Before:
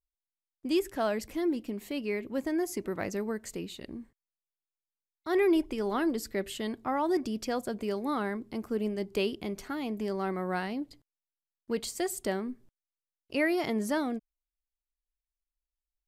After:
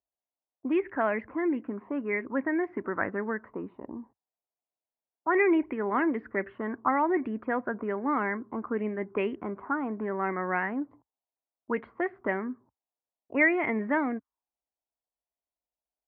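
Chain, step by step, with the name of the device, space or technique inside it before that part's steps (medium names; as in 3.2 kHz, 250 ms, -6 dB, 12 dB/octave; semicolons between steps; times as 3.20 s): envelope filter bass rig (touch-sensitive low-pass 690–2200 Hz up, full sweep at -26.5 dBFS; cabinet simulation 67–2200 Hz, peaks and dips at 71 Hz -7 dB, 150 Hz -9 dB, 270 Hz +4 dB, 1 kHz +6 dB)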